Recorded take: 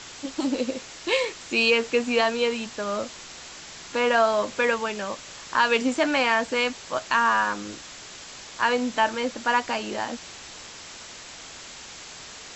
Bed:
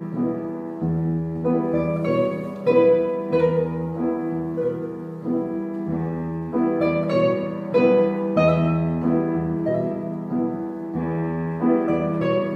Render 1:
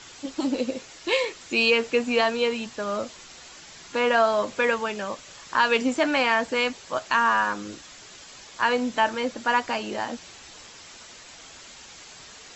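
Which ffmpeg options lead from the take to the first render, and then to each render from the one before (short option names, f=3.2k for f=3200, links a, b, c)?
-af "afftdn=nr=6:nf=-42"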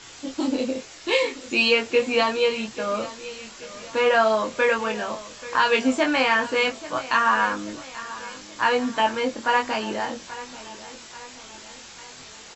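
-filter_complex "[0:a]asplit=2[a][b];[b]adelay=23,volume=-3dB[c];[a][c]amix=inputs=2:normalize=0,aecho=1:1:835|1670|2505|3340:0.15|0.0748|0.0374|0.0187"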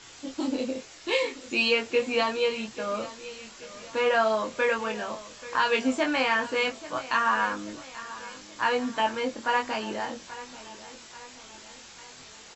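-af "volume=-4.5dB"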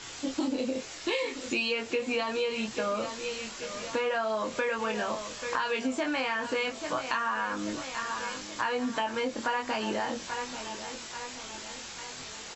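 -filter_complex "[0:a]asplit=2[a][b];[b]alimiter=limit=-22.5dB:level=0:latency=1:release=39,volume=-1dB[c];[a][c]amix=inputs=2:normalize=0,acompressor=threshold=-27dB:ratio=6"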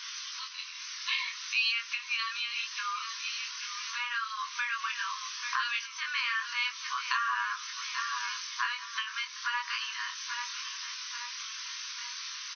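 -af "afftfilt=real='re*between(b*sr/4096,960,6300)':imag='im*between(b*sr/4096,960,6300)':win_size=4096:overlap=0.75,highshelf=f=4.5k:g=9.5"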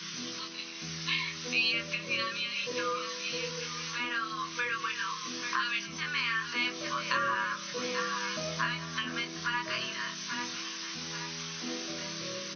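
-filter_complex "[1:a]volume=-21dB[a];[0:a][a]amix=inputs=2:normalize=0"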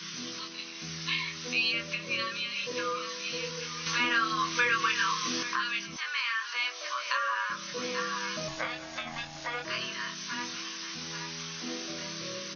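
-filter_complex "[0:a]asettb=1/sr,asplit=3[a][b][c];[a]atrim=end=3.864[d];[b]atrim=start=3.86:end=5.43,asetpts=PTS-STARTPTS,afade=t=in:d=0.004:c=qsin,afade=t=out:st=1.566:d=0.004:c=qsin,acontrast=63[e];[c]atrim=start=5.426[f];[d][e]acrossfade=d=0.004:c1=hsin:c2=qsin[g];[g][f]acrossfade=d=0.004:c1=qsin:c2=hsin,asettb=1/sr,asplit=3[h][i][j];[h]atrim=end=5.964[k];[i]atrim=start=5.96:end=7.5,asetpts=PTS-STARTPTS,afade=t=in:d=0.004:c=qsin,afade=t=out:st=1.536:d=0.004:c=qsin,highpass=f=570:w=0.5412,highpass=f=570:w=1.3066[l];[j]atrim=start=7.496[m];[k][l]acrossfade=d=0.004:c1=hsin:c2=qsin[n];[n][m]acrossfade=d=0.004:c1=qsin:c2=hsin,asettb=1/sr,asplit=3[o][p][q];[o]atrim=end=8.484[r];[p]atrim=start=8.48:end=9.65,asetpts=PTS-STARTPTS,afade=t=in:d=0.004:c=qsin,afade=t=out:st=1.166:d=0.004:c=qsin,aeval=exprs='val(0)*sin(2*PI*480*n/s)':c=same[s];[q]atrim=start=9.646[t];[r][s]acrossfade=d=0.004:c1=hsin:c2=qsin[u];[u][t]acrossfade=d=0.004:c1=qsin:c2=hsin"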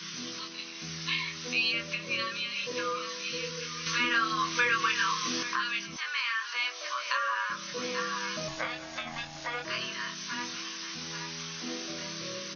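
-filter_complex "[0:a]asettb=1/sr,asplit=3[a][b][c];[a]atrim=end=3.234[d];[b]atrim=start=3.23:end=4.14,asetpts=PTS-STARTPTS,afade=t=in:d=0.004:c=qsin,afade=t=out:st=0.906:d=0.004:c=qsin,asuperstop=centerf=780:order=4:qfactor=2[e];[c]atrim=start=4.136[f];[d][e]acrossfade=d=0.004:c1=hsin:c2=qsin[g];[g][f]acrossfade=d=0.004:c1=qsin:c2=hsin"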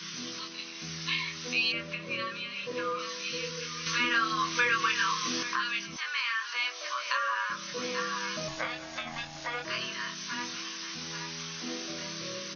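-filter_complex "[0:a]asettb=1/sr,asplit=3[a][b][c];[a]atrim=end=1.724[d];[b]atrim=start=1.72:end=2.99,asetpts=PTS-STARTPTS,afade=t=in:d=0.004:c=qsin,afade=t=out:st=1.266:d=0.004:c=qsin,aemphasis=mode=reproduction:type=75fm[e];[c]atrim=start=2.986[f];[d][e]acrossfade=d=0.004:c1=hsin:c2=qsin[g];[g][f]acrossfade=d=0.004:c1=qsin:c2=hsin"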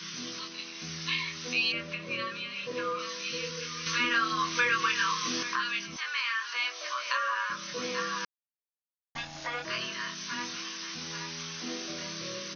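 -filter_complex "[0:a]asplit=3[a][b][c];[a]atrim=end=8.25,asetpts=PTS-STARTPTS,afade=t=out:st=8.246:d=0.004:c=hsin[d];[b]atrim=start=8.25:end=9.15,asetpts=PTS-STARTPTS,volume=0[e];[c]atrim=start=9.15,asetpts=PTS-STARTPTS,afade=t=in:d=0.004:c=hsin[f];[d][e][f]concat=n=3:v=0:a=1"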